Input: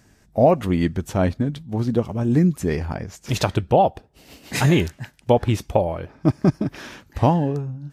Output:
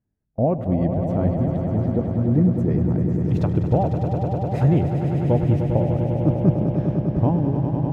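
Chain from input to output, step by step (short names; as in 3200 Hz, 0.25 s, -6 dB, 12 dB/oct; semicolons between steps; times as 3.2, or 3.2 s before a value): swelling echo 0.1 s, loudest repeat 5, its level -9 dB; gate with hold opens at -12 dBFS; EQ curve 150 Hz 0 dB, 630 Hz -7 dB, 6500 Hz -26 dB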